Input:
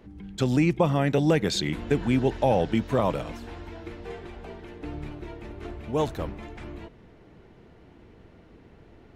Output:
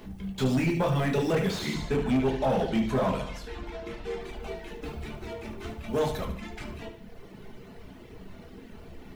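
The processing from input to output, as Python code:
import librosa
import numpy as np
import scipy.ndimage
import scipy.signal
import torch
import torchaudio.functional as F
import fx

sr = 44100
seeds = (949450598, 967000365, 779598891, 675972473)

y = fx.law_mismatch(x, sr, coded='mu')
y = fx.room_shoebox(y, sr, seeds[0], volume_m3=190.0, walls='furnished', distance_m=1.4)
y = fx.dereverb_blind(y, sr, rt60_s=0.97)
y = fx.high_shelf(y, sr, hz=9000.0, db=-10.0, at=(1.74, 4.21))
y = fx.echo_feedback(y, sr, ms=73, feedback_pct=51, wet_db=-10.5)
y = 10.0 ** (-16.5 / 20.0) * np.tanh(y / 10.0 ** (-16.5 / 20.0))
y = fx.high_shelf(y, sr, hz=2700.0, db=8.5)
y = fx.slew_limit(y, sr, full_power_hz=94.0)
y = F.gain(torch.from_numpy(y), -3.0).numpy()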